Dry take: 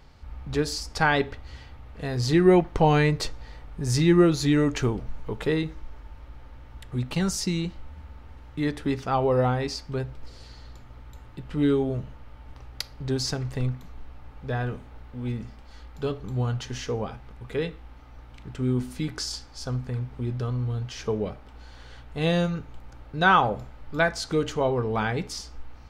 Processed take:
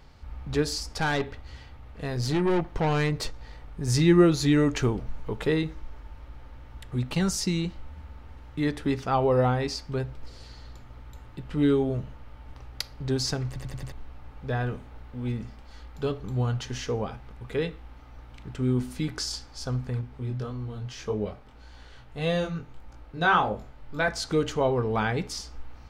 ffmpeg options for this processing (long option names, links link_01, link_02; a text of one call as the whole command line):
ffmpeg -i in.wav -filter_complex "[0:a]asettb=1/sr,asplit=3[link_01][link_02][link_03];[link_01]atrim=end=0.944[link_04];[link_02]atrim=start=0.94:end=3.88,asetpts=PTS-STARTPTS,afade=type=in:duration=0.004:curve=qsin,afade=type=out:start_time=2.936:duration=0.004:curve=qsin,aeval=exprs='(tanh(11.2*val(0)+0.4)-tanh(0.4))/11.2':channel_layout=same[link_05];[link_03]atrim=start=3.876[link_06];[link_04][link_05]acrossfade=duration=0.004:curve1=hsin:curve2=qsin[link_07];[link_07][link_06]acrossfade=duration=0.004:curve1=qsin:curve2=hsin,asettb=1/sr,asplit=3[link_08][link_09][link_10];[link_08]atrim=end=20.014[link_11];[link_09]atrim=start=20.01:end=24.08,asetpts=PTS-STARTPTS,afade=type=in:duration=0.004:curve=qsin,afade=type=out:start_time=4.066:duration=0.004:curve=qsin,flanger=delay=19:depth=5:speed=1.7[link_12];[link_10]atrim=start=24.076[link_13];[link_11][link_12]acrossfade=duration=0.004:curve1=hsin:curve2=qsin[link_14];[link_14][link_13]acrossfade=duration=0.004:curve1=qsin:curve2=hsin,asplit=6[link_15][link_16][link_17][link_18][link_19][link_20];[link_15]atrim=end=13.562[link_21];[link_16]atrim=start=13.468:end=13.562[link_22];[link_17]atrim=start=13.468:end=13.562[link_23];[link_18]atrim=start=13.468:end=13.562[link_24];[link_19]atrim=start=13.468:end=13.562[link_25];[link_20]atrim=start=13.918[link_26];[link_21][link_22]acrossfade=duration=0.004:curve1=hsin:curve2=hsin[link_27];[link_27][link_23]acrossfade=duration=0.004:curve1=hsin:curve2=hsin[link_28];[link_28][link_24]acrossfade=duration=0.004:curve1=hsin:curve2=hsin[link_29];[link_29][link_25]acrossfade=duration=0.004:curve1=hsin:curve2=hsin[link_30];[link_30][link_26]acrossfade=duration=0.004:curve1=hsin:curve2=hsin" out.wav